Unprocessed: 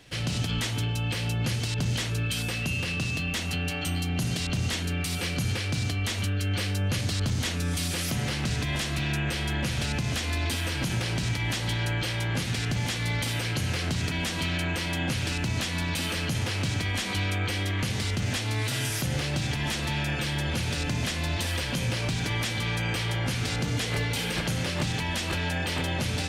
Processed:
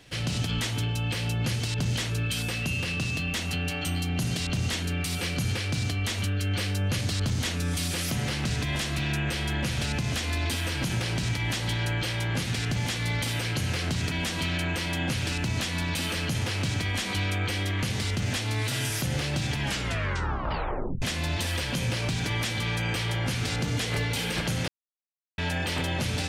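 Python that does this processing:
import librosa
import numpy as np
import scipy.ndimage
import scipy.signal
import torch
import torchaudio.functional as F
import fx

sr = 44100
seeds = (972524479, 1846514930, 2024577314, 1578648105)

y = fx.edit(x, sr, fx.tape_stop(start_s=19.59, length_s=1.43),
    fx.silence(start_s=24.68, length_s=0.7), tone=tone)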